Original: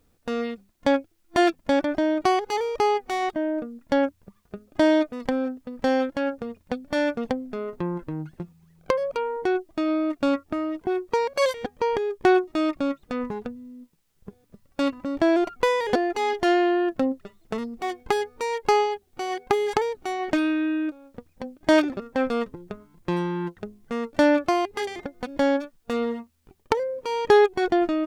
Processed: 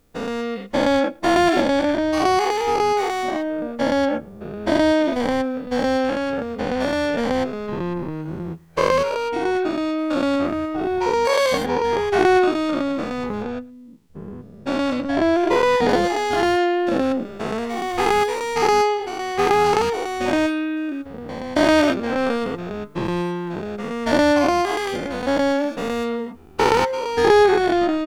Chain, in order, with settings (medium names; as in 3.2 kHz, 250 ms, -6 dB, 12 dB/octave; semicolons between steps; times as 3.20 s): every event in the spectrogram widened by 240 ms; 13.42–15.89 s: treble shelf 8.4 kHz -8.5 dB; echo from a far wall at 19 m, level -26 dB